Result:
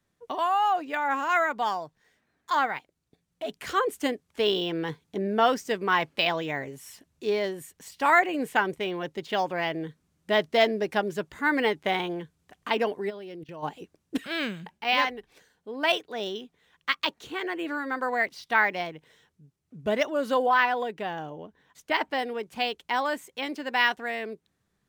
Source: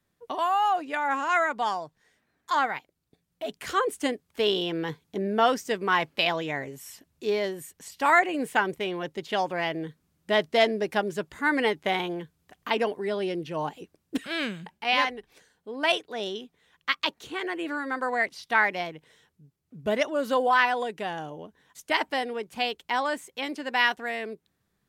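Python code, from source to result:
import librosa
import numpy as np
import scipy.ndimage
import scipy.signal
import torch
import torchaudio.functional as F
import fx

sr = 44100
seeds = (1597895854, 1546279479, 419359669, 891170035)

y = fx.level_steps(x, sr, step_db=20, at=(13.09, 13.62), fade=0.02)
y = fx.high_shelf(y, sr, hz=5600.0, db=-8.5, at=(20.46, 22.19))
y = np.interp(np.arange(len(y)), np.arange(len(y))[::2], y[::2])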